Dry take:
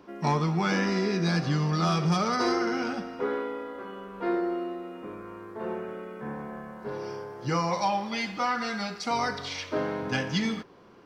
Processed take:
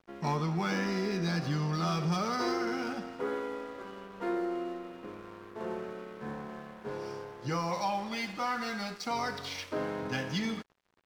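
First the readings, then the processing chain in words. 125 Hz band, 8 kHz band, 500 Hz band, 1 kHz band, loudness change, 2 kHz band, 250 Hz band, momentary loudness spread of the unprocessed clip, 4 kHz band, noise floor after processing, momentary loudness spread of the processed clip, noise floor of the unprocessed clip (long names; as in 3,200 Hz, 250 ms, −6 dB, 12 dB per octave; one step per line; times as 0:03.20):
−5.5 dB, −4.5 dB, −5.0 dB, −5.0 dB, −5.0 dB, −5.0 dB, −5.0 dB, 13 LU, −5.0 dB, −51 dBFS, 11 LU, −44 dBFS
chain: in parallel at −0.5 dB: brickwall limiter −26 dBFS, peak gain reduction 11 dB
on the sum: dead-zone distortion −42.5 dBFS
level −7.5 dB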